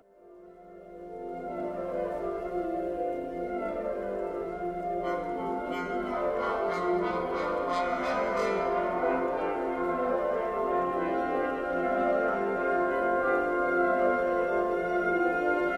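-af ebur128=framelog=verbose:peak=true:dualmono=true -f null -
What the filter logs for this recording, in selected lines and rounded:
Integrated loudness:
  I:         -26.5 LUFS
  Threshold: -36.8 LUFS
Loudness range:
  LRA:         6.3 LU
  Threshold: -46.8 LUFS
  LRA low:   -30.5 LUFS
  LRA high:  -24.2 LUFS
True peak:
  Peak:      -14.2 dBFS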